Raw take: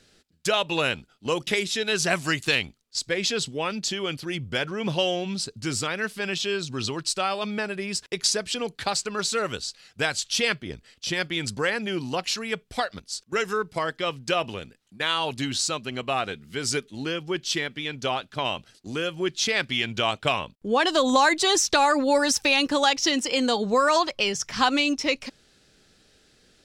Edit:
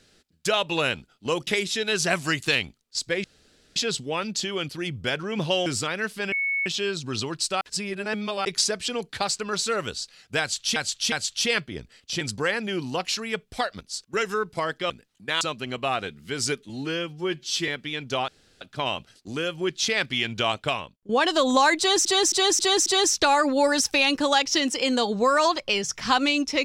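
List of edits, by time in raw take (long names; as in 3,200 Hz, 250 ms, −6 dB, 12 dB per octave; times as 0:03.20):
0:03.24: splice in room tone 0.52 s
0:05.14–0:05.66: remove
0:06.32: insert tone 2,210 Hz −22.5 dBFS 0.34 s
0:07.27–0:08.11: reverse
0:10.06–0:10.42: repeat, 3 plays
0:11.15–0:11.40: remove
0:14.09–0:14.62: remove
0:15.13–0:15.66: remove
0:16.94–0:17.60: time-stretch 1.5×
0:18.20: splice in room tone 0.33 s
0:20.15–0:20.68: fade out, to −18.5 dB
0:21.37–0:21.64: repeat, 5 plays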